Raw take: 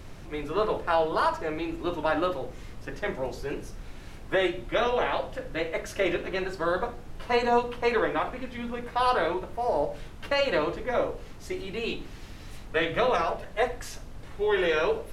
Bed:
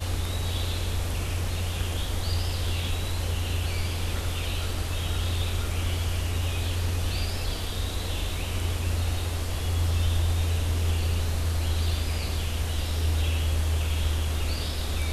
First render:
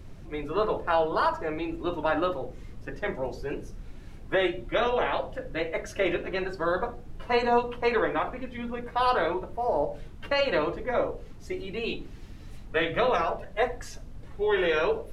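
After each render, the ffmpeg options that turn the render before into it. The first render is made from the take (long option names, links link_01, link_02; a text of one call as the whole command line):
ffmpeg -i in.wav -af "afftdn=noise_reduction=8:noise_floor=-43" out.wav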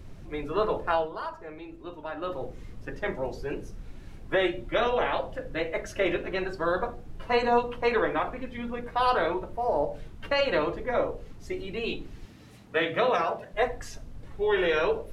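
ffmpeg -i in.wav -filter_complex "[0:a]asettb=1/sr,asplit=3[link_01][link_02][link_03];[link_01]atrim=end=12.254[link_04];[link_02]atrim=start=12.25:end=13.54,asetpts=PTS-STARTPTS,afade=type=in:duration=0.004:curve=qsin,afade=type=out:start_time=1.286:duration=0.004:curve=qsin,highpass=130[link_05];[link_03]atrim=start=13.536[link_06];[link_04][link_05]acrossfade=duration=0.004:curve1=hsin:curve2=qsin[link_07];[link_07][link_06]acrossfade=duration=0.004:curve1=qsin:curve2=hsin,asplit=3[link_08][link_09][link_10];[link_08]atrim=end=1.13,asetpts=PTS-STARTPTS,afade=type=out:start_time=0.9:duration=0.23:silence=0.298538[link_11];[link_09]atrim=start=1.13:end=2.19,asetpts=PTS-STARTPTS,volume=-10.5dB[link_12];[link_10]atrim=start=2.19,asetpts=PTS-STARTPTS,afade=type=in:duration=0.23:silence=0.298538[link_13];[link_11][link_12][link_13]concat=n=3:v=0:a=1" out.wav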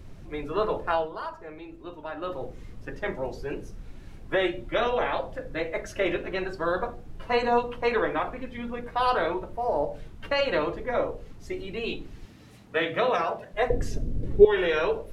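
ffmpeg -i in.wav -filter_complex "[0:a]asettb=1/sr,asplit=3[link_01][link_02][link_03];[link_01]atrim=end=4.994[link_04];[link_02]atrim=start=4.99:end=5.88,asetpts=PTS-STARTPTS,afade=type=in:duration=0.004:curve=qsin,afade=type=out:start_time=0.886:duration=0.004:curve=qsin,bandreject=frequency=2900:width=12[link_05];[link_03]atrim=start=5.876[link_06];[link_04][link_05]acrossfade=duration=0.004:curve1=hsin:curve2=qsin[link_07];[link_07][link_06]acrossfade=duration=0.004:curve1=qsin:curve2=hsin,asettb=1/sr,asplit=3[link_08][link_09][link_10];[link_08]atrim=end=13.704[link_11];[link_09]atrim=start=13.7:end=14.45,asetpts=PTS-STARTPTS,afade=type=in:duration=0.004:curve=qsin,afade=type=out:start_time=0.746:duration=0.004:curve=qsin,lowshelf=frequency=620:width_type=q:width=1.5:gain=13.5[link_12];[link_10]atrim=start=14.446[link_13];[link_11][link_12]acrossfade=duration=0.004:curve1=hsin:curve2=qsin[link_14];[link_14][link_13]acrossfade=duration=0.004:curve1=qsin:curve2=hsin" out.wav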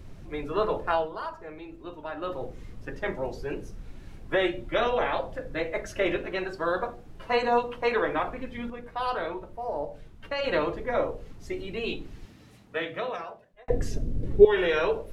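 ffmpeg -i in.wav -filter_complex "[0:a]asettb=1/sr,asplit=3[link_01][link_02][link_03];[link_01]atrim=end=6.264[link_04];[link_02]atrim=start=6.26:end=8.09,asetpts=PTS-STARTPTS,afade=type=in:duration=0.004:curve=qsin,afade=type=out:start_time=1.826:duration=0.004:curve=qsin,lowshelf=frequency=170:gain=-6[link_05];[link_03]atrim=start=8.086[link_06];[link_04][link_05]acrossfade=duration=0.004:curve1=hsin:curve2=qsin[link_07];[link_07][link_06]acrossfade=duration=0.004:curve1=qsin:curve2=hsin,asplit=4[link_08][link_09][link_10][link_11];[link_08]atrim=end=8.702[link_12];[link_09]atrim=start=8.698:end=10.442,asetpts=PTS-STARTPTS,volume=-5.5dB[link_13];[link_10]atrim=start=10.438:end=13.68,asetpts=PTS-STARTPTS,afade=type=out:start_time=1.692:duration=1.55[link_14];[link_11]atrim=start=13.68,asetpts=PTS-STARTPTS,afade=type=in:duration=0.004:curve=hsin[link_15];[link_12][link_13]acrossfade=duration=0.004:curve1=hsin:curve2=hsin[link_16];[link_14][link_15]concat=n=2:v=0:a=1[link_17];[link_16][link_17]acrossfade=duration=0.004:curve1=hsin:curve2=hsin" out.wav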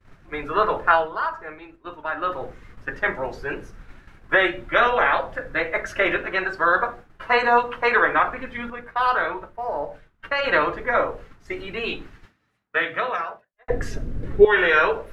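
ffmpeg -i in.wav -af "equalizer=frequency=1500:width=0.87:gain=14.5,agate=range=-33dB:threshold=-35dB:ratio=3:detection=peak" out.wav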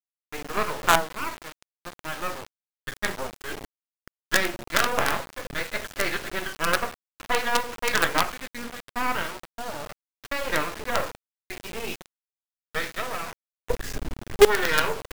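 ffmpeg -i in.wav -filter_complex "[0:a]acrossover=split=1300[link_01][link_02];[link_01]aeval=exprs='val(0)*(1-0.5/2+0.5/2*cos(2*PI*2.2*n/s))':channel_layout=same[link_03];[link_02]aeval=exprs='val(0)*(1-0.5/2-0.5/2*cos(2*PI*2.2*n/s))':channel_layout=same[link_04];[link_03][link_04]amix=inputs=2:normalize=0,acrusher=bits=3:dc=4:mix=0:aa=0.000001" out.wav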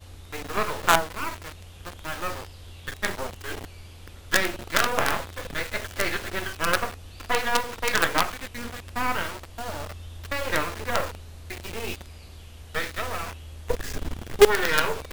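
ffmpeg -i in.wav -i bed.wav -filter_complex "[1:a]volume=-16dB[link_01];[0:a][link_01]amix=inputs=2:normalize=0" out.wav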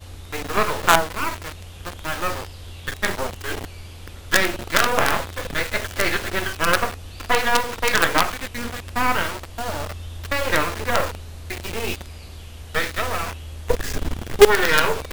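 ffmpeg -i in.wav -af "volume=6dB,alimiter=limit=-1dB:level=0:latency=1" out.wav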